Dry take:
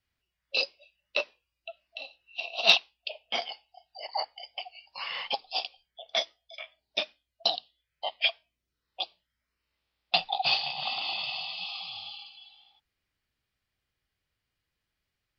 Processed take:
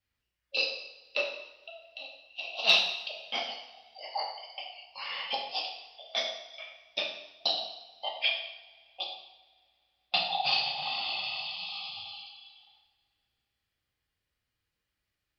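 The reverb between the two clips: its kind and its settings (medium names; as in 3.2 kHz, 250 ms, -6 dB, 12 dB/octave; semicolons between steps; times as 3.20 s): two-slope reverb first 0.79 s, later 2.6 s, from -21 dB, DRR -1 dB; trim -4.5 dB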